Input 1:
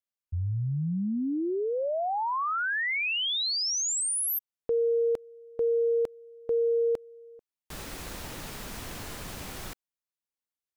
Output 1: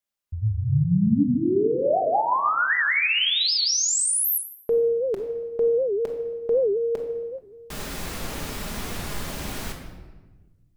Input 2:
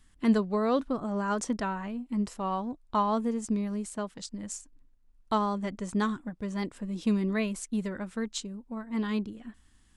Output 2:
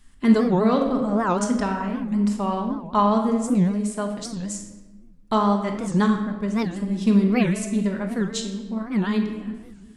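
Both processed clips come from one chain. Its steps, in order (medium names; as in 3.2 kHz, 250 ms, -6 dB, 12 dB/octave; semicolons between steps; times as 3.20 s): simulated room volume 860 m³, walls mixed, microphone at 1.3 m; warped record 78 rpm, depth 250 cents; trim +4.5 dB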